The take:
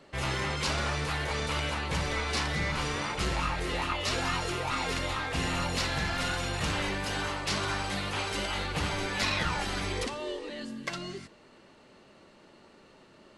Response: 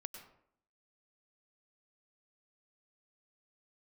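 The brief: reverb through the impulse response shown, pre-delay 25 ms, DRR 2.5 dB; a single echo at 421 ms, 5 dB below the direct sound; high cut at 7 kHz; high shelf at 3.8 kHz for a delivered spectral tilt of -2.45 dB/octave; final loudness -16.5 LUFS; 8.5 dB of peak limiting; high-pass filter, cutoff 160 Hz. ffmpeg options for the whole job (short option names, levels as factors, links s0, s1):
-filter_complex "[0:a]highpass=160,lowpass=7000,highshelf=f=3800:g=6.5,alimiter=limit=0.075:level=0:latency=1,aecho=1:1:421:0.562,asplit=2[s0][s1];[1:a]atrim=start_sample=2205,adelay=25[s2];[s1][s2]afir=irnorm=-1:irlink=0,volume=1.12[s3];[s0][s3]amix=inputs=2:normalize=0,volume=4.22"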